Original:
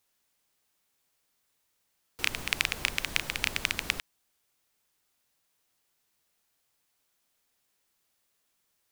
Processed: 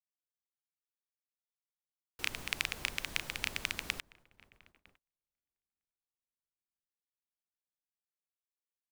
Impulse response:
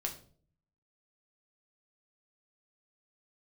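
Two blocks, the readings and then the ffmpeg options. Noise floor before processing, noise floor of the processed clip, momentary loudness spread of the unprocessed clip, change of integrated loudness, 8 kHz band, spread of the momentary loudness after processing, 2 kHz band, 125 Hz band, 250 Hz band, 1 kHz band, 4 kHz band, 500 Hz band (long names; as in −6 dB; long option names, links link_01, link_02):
−76 dBFS, below −85 dBFS, 4 LU, −6.5 dB, −6.5 dB, 4 LU, −6.5 dB, −6.5 dB, −6.5 dB, −6.5 dB, −6.5 dB, −6.5 dB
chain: -filter_complex "[0:a]asplit=2[link_01][link_02];[link_02]adelay=955,lowpass=frequency=1300:poles=1,volume=-20dB,asplit=2[link_03][link_04];[link_04]adelay=955,lowpass=frequency=1300:poles=1,volume=0.5,asplit=2[link_05][link_06];[link_06]adelay=955,lowpass=frequency=1300:poles=1,volume=0.5,asplit=2[link_07][link_08];[link_08]adelay=955,lowpass=frequency=1300:poles=1,volume=0.5[link_09];[link_01][link_03][link_05][link_07][link_09]amix=inputs=5:normalize=0,agate=range=-31dB:threshold=-58dB:ratio=16:detection=peak,volume=-6.5dB"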